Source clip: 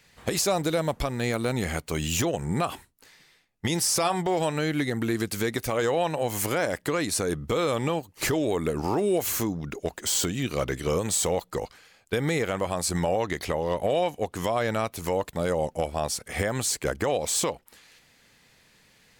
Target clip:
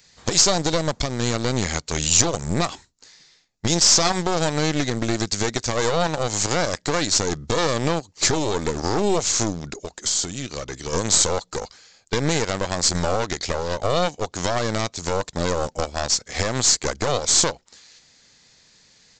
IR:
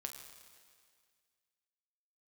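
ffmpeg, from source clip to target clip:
-filter_complex "[0:a]asplit=2[s0][s1];[s1]aeval=exprs='val(0)*gte(abs(val(0)),0.0355)':c=same,volume=0.316[s2];[s0][s2]amix=inputs=2:normalize=0,asplit=3[s3][s4][s5];[s3]afade=t=out:st=9.76:d=0.02[s6];[s4]acompressor=threshold=0.0316:ratio=2.5,afade=t=in:st=9.76:d=0.02,afade=t=out:st=10.92:d=0.02[s7];[s5]afade=t=in:st=10.92:d=0.02[s8];[s6][s7][s8]amix=inputs=3:normalize=0,aeval=exprs='0.355*(cos(1*acos(clip(val(0)/0.355,-1,1)))-cos(1*PI/2))+0.1*(cos(4*acos(clip(val(0)/0.355,-1,1)))-cos(4*PI/2))':c=same,aresample=16000,aresample=44100,aexciter=amount=4.3:drive=2.9:freq=3900"

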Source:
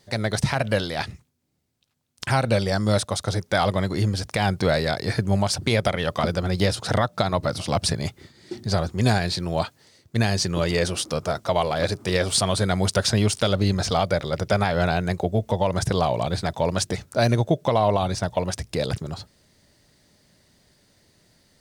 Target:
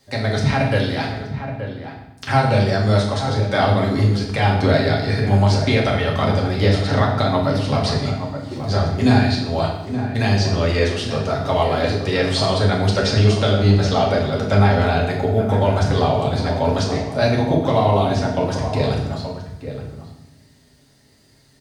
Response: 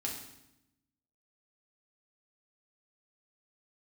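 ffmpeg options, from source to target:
-filter_complex "[0:a]acrossover=split=390|610|5400[s0][s1][s2][s3];[s3]acompressor=threshold=0.00251:ratio=10[s4];[s0][s1][s2][s4]amix=inputs=4:normalize=0,asplit=2[s5][s6];[s6]adelay=874.6,volume=0.355,highshelf=f=4000:g=-19.7[s7];[s5][s7]amix=inputs=2:normalize=0[s8];[1:a]atrim=start_sample=2205[s9];[s8][s9]afir=irnorm=-1:irlink=0,volume=1.33"

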